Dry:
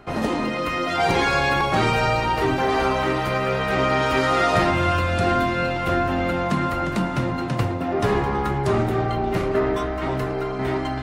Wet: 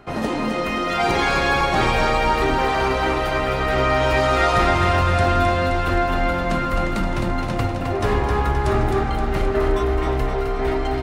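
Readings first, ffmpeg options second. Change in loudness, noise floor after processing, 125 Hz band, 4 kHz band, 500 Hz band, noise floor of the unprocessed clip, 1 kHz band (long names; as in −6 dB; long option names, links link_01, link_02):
+1.5 dB, −24 dBFS, +2.0 dB, +1.5 dB, +1.5 dB, −27 dBFS, +2.0 dB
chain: -filter_complex "[0:a]asubboost=boost=6:cutoff=55,asplit=2[link_01][link_02];[link_02]aecho=0:1:262|524|786|1048|1310|1572|1834|2096:0.562|0.326|0.189|0.11|0.0636|0.0369|0.0214|0.0124[link_03];[link_01][link_03]amix=inputs=2:normalize=0"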